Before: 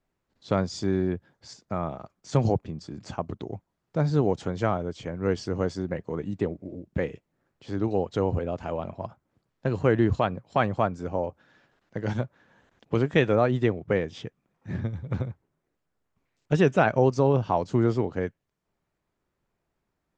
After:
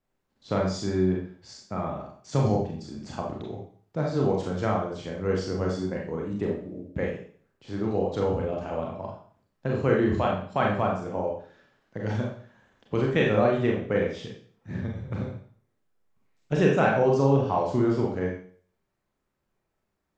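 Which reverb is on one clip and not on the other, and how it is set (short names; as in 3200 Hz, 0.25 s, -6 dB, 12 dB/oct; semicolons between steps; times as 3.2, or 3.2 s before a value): Schroeder reverb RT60 0.49 s, combs from 29 ms, DRR -1.5 dB; gain -3.5 dB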